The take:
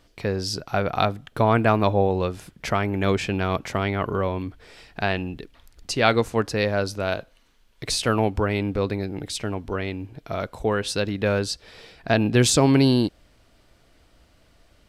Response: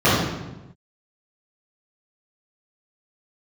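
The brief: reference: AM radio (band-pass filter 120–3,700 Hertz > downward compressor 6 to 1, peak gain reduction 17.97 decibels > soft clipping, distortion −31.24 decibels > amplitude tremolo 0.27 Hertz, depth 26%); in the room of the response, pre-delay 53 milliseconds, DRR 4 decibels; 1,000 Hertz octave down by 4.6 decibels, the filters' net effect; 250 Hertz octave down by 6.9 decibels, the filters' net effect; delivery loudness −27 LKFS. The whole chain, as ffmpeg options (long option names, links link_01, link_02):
-filter_complex "[0:a]equalizer=frequency=250:width_type=o:gain=-8,equalizer=frequency=1000:width_type=o:gain=-6,asplit=2[link_01][link_02];[1:a]atrim=start_sample=2205,adelay=53[link_03];[link_02][link_03]afir=irnorm=-1:irlink=0,volume=-28.5dB[link_04];[link_01][link_04]amix=inputs=2:normalize=0,highpass=120,lowpass=3700,acompressor=threshold=-33dB:ratio=6,asoftclip=threshold=-19dB,tremolo=f=0.27:d=0.26,volume=11dB"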